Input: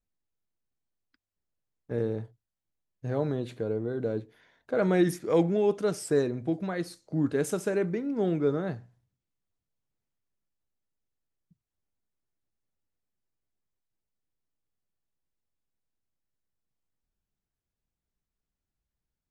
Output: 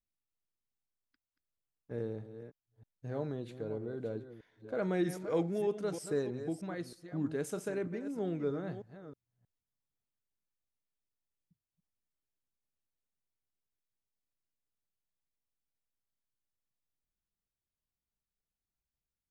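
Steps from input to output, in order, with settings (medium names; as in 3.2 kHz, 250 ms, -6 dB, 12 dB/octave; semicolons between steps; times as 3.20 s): chunks repeated in reverse 315 ms, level -10.5 dB; trim -8.5 dB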